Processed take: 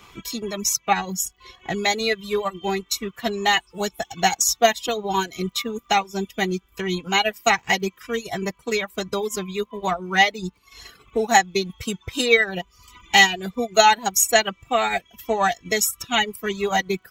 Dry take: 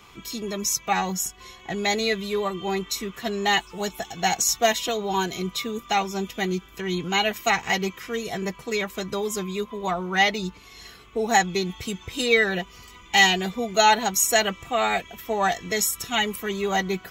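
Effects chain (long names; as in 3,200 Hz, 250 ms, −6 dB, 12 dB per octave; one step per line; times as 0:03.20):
transient designer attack +3 dB, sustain −6 dB
surface crackle 22 per second −47 dBFS
reverb reduction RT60 0.76 s
level +2 dB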